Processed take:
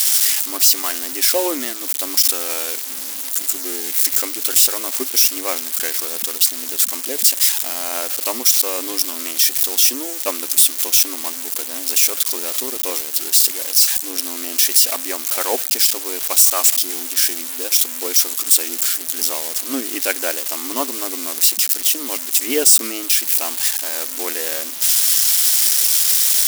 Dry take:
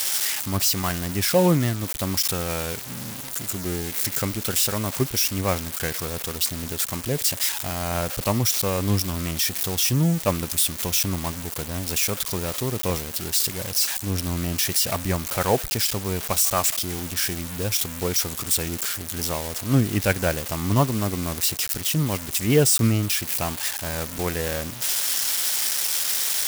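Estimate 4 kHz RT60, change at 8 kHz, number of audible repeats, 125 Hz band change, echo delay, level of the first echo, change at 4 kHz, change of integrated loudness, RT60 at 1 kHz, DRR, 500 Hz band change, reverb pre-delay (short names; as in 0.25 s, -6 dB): none, +9.0 dB, none, under -40 dB, none, none, +6.5 dB, +7.5 dB, none, none, -1.0 dB, none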